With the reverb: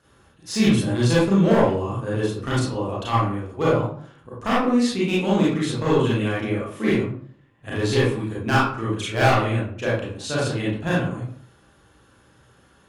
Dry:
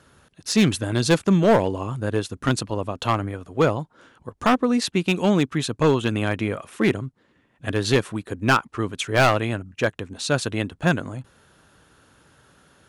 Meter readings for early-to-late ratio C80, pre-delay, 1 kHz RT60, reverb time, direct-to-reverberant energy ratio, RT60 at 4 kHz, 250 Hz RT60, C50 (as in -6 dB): 5.5 dB, 29 ms, 0.50 s, 0.50 s, -8.0 dB, 0.35 s, 0.55 s, -1.0 dB